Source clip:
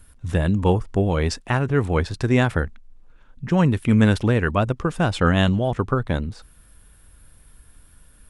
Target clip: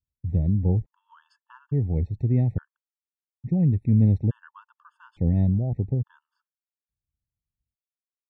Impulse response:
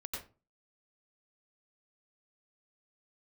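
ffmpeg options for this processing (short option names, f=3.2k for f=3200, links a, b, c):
-af "bandpass=f=110:t=q:w=1.2:csg=0,agate=range=-33dB:threshold=-37dB:ratio=3:detection=peak,afftfilt=real='re*gt(sin(2*PI*0.58*pts/sr)*(1-2*mod(floor(b*sr/1024/890),2)),0)':imag='im*gt(sin(2*PI*0.58*pts/sr)*(1-2*mod(floor(b*sr/1024/890),2)),0)':win_size=1024:overlap=0.75,volume=1dB"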